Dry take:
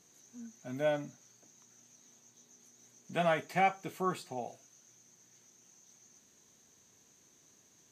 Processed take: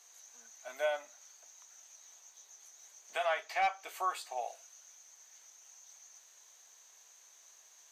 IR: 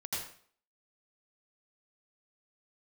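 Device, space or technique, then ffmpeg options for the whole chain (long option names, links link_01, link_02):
clipper into limiter: -filter_complex "[0:a]highpass=frequency=640:width=0.5412,highpass=frequency=640:width=1.3066,asoftclip=type=hard:threshold=-22dB,alimiter=level_in=4dB:limit=-24dB:level=0:latency=1:release=355,volume=-4dB,asettb=1/sr,asplit=3[link_01][link_02][link_03];[link_01]atrim=end=3.254[link_04];[link_02]atrim=start=3.25:end=3.84,asetpts=PTS-STARTPTS,afade=type=in:duration=0.004:curve=qsin,afade=type=out:start_time=0.586:duration=0.004:curve=qsin,highshelf=frequency=6700:width_type=q:width=1.5:gain=-6[link_05];[link_03]atrim=start=3.836[link_06];[link_04][link_05]acrossfade=duration=0.004:curve1=hsin:curve2=qsin[link_07];[link_07][link_06]acrossfade=duration=0.004:curve1=qsin:curve2=hsin,volume=5dB"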